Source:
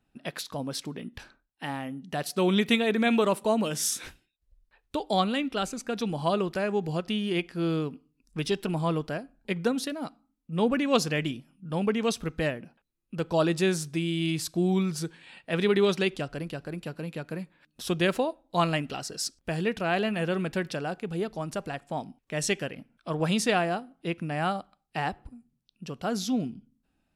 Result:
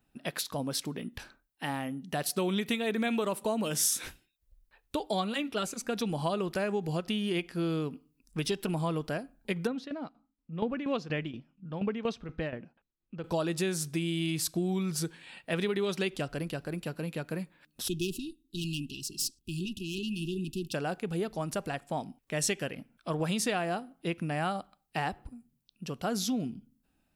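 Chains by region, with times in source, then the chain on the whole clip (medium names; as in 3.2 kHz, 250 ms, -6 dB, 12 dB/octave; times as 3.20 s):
5.07–5.82 s: high-pass 77 Hz + comb of notches 260 Hz
9.67–13.24 s: tremolo saw down 4.2 Hz, depth 75% + distance through air 200 m
17.88–20.74 s: valve stage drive 24 dB, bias 0.55 + brick-wall FIR band-stop 400–2500 Hz
whole clip: compression, threshold -27 dBFS; treble shelf 11 kHz +11.5 dB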